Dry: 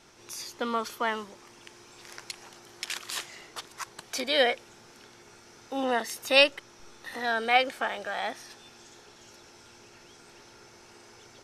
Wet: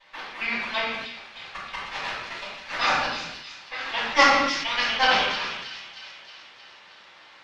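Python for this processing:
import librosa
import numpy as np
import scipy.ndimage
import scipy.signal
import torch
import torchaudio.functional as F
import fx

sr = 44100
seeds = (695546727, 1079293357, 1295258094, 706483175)

y = fx.local_reverse(x, sr, ms=204.0)
y = scipy.signal.sosfilt(scipy.signal.butter(2, 1400.0, 'highpass', fs=sr, output='sos'), y)
y = y + 0.41 * np.pad(y, (int(5.2 * sr / 1000.0), 0))[:len(y)]
y = fx.stretch_vocoder(y, sr, factor=0.65)
y = np.abs(y)
y = fx.bandpass_q(y, sr, hz=2200.0, q=0.6)
y = fx.air_absorb(y, sr, metres=240.0)
y = fx.echo_wet_highpass(y, sr, ms=313, feedback_pct=62, hz=3100.0, wet_db=-8)
y = fx.room_shoebox(y, sr, seeds[0], volume_m3=240.0, walls='mixed', distance_m=5.7)
y = fx.sustainer(y, sr, db_per_s=41.0)
y = F.gain(torch.from_numpy(y), 5.0).numpy()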